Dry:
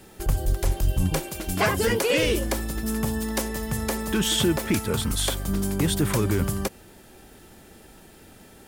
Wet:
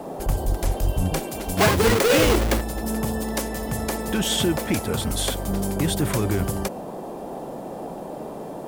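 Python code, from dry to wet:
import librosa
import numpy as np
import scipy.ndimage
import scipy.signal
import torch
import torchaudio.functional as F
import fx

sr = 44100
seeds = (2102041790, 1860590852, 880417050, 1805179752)

y = fx.halfwave_hold(x, sr, at=(1.58, 2.61))
y = fx.dmg_noise_band(y, sr, seeds[0], low_hz=150.0, high_hz=800.0, level_db=-34.0)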